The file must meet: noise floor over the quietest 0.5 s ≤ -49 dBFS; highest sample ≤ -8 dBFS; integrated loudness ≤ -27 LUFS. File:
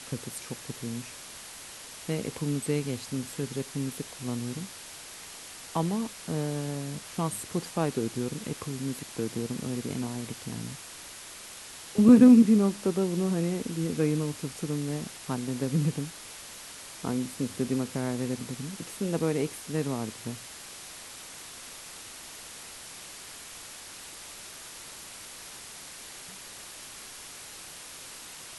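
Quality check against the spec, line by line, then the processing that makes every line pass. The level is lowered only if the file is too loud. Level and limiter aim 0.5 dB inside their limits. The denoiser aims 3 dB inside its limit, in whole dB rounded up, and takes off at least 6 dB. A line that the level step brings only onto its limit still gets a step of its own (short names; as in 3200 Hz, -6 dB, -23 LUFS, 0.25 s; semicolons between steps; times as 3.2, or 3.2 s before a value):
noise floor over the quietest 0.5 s -45 dBFS: fail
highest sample -6.5 dBFS: fail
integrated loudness -28.5 LUFS: OK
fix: denoiser 7 dB, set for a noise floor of -45 dBFS; limiter -8.5 dBFS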